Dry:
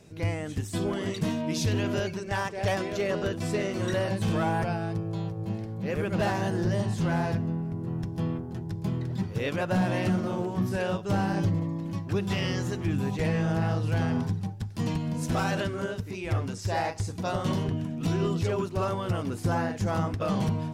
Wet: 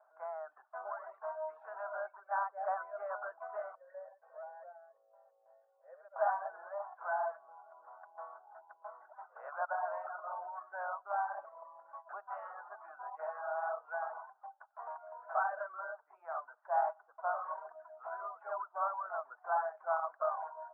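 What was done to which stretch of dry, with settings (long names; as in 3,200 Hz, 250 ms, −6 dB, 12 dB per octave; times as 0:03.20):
0:03.75–0:06.16: formant resonators in series e
whole clip: reverb reduction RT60 0.72 s; Chebyshev band-pass filter 630–1,500 Hz, order 4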